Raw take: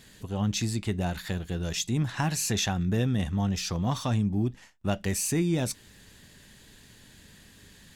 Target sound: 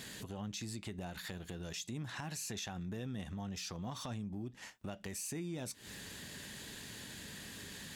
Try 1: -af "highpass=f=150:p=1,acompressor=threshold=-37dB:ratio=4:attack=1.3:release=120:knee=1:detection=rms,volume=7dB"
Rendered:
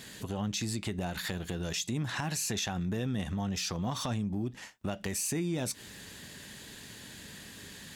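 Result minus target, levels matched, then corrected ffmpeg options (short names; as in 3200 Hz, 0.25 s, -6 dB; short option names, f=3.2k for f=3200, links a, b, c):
compressor: peak gain reduction -9 dB
-af "highpass=f=150:p=1,acompressor=threshold=-49dB:ratio=4:attack=1.3:release=120:knee=1:detection=rms,volume=7dB"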